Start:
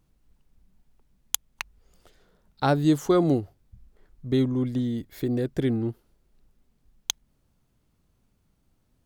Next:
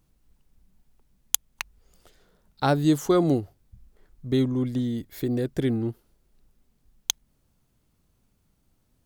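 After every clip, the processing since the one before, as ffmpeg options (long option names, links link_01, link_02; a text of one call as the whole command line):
ffmpeg -i in.wav -af "highshelf=frequency=5500:gain=5" out.wav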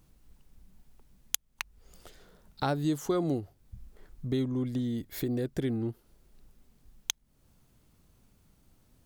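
ffmpeg -i in.wav -af "acompressor=threshold=-41dB:ratio=2,volume=4.5dB" out.wav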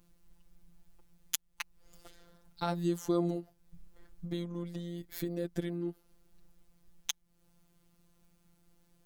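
ffmpeg -i in.wav -af "afftfilt=real='hypot(re,im)*cos(PI*b)':imag='0':win_size=1024:overlap=0.75" out.wav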